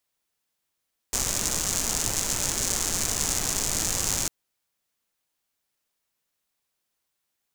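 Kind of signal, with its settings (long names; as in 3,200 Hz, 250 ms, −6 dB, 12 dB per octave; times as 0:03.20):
rain-like ticks over hiss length 3.15 s, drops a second 190, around 6,800 Hz, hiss −3.5 dB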